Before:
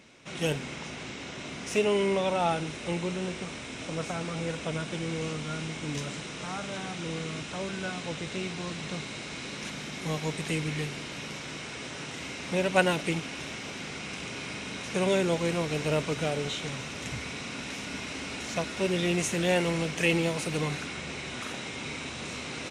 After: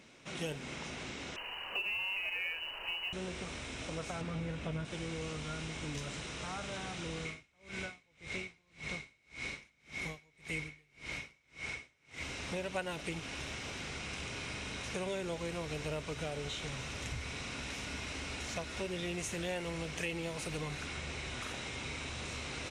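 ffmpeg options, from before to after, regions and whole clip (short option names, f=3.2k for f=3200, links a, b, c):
-filter_complex "[0:a]asettb=1/sr,asplit=3[a][b][c];[a]atrim=end=1.364[d];[b]atrim=start=1.36:end=3.13,asetpts=PTS-STARTPTS,afade=t=in:d=0.004:c=qsin,afade=t=out:st=1.766:d=0.004:c=qsin,lowpass=f=2.6k:t=q:w=0.5098,lowpass=f=2.6k:t=q:w=0.6013,lowpass=f=2.6k:t=q:w=0.9,lowpass=f=2.6k:t=q:w=2.563,afreqshift=-3100,acrusher=bits=7:mode=log:mix=0:aa=0.000001[e];[c]atrim=start=3.126[f];[d][e]acrossfade=d=0.004:c1=hsin:c2=qsin[g];[g][f]acrossfade=d=0.004:c1=qsin:c2=hsin,asettb=1/sr,asplit=3[h][i][j];[h]atrim=end=4.214[k];[i]atrim=start=4.21:end=4.85,asetpts=PTS-STARTPTS,afade=t=in:d=0.004:c=qsin,afade=t=out:st=0.636:d=0.004:c=qsin,highpass=f=97:p=1,bass=f=250:g=9,treble=f=4k:g=-8,asplit=2[l][m];[m]adelay=19,volume=-10.5dB[n];[l][n]amix=inputs=2:normalize=0,atrim=end_sample=28224[o];[j]atrim=start=4.846[p];[k][o]acrossfade=d=0.004:c1=hsin:c2=qsin[q];[q][p]acrossfade=d=0.004:c1=qsin:c2=hsin,asettb=1/sr,asplit=3[r][s][t];[r]atrim=end=7.254[u];[s]atrim=start=7.25:end=12.23,asetpts=PTS-STARTPTS,afade=t=in:d=0.004:c=qsin,afade=t=out:st=4.976:d=0.004:c=qsin,equalizer=f=2.2k:w=7.3:g=13.5,aeval=exprs='val(0)*pow(10,-36*(0.5-0.5*cos(2*PI*1.8*n/s))/20)':c=same[v];[t]atrim=start=12.226[w];[u][v]acrossfade=d=0.004:c1=hsin:c2=qsin[x];[x][w]acrossfade=d=0.004:c1=qsin:c2=hsin,asubboost=boost=6:cutoff=73,acompressor=threshold=-34dB:ratio=3,volume=-3dB"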